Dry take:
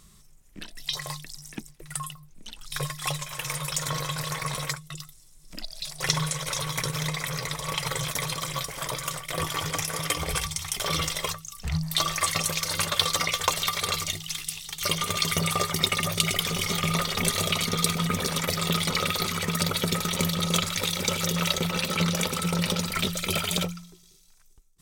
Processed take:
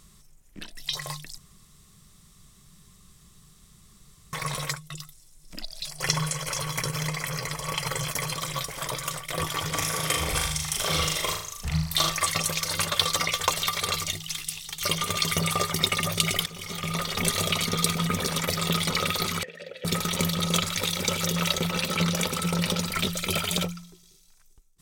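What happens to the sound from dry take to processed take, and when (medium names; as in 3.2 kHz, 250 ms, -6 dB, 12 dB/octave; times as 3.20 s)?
1.38–4.33 s: room tone
5.86–8.34 s: Butterworth band-stop 3.7 kHz, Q 7.2
9.68–12.10 s: flutter echo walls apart 6.7 m, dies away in 0.61 s
16.46–17.28 s: fade in, from -16 dB
19.43–19.85 s: vowel filter e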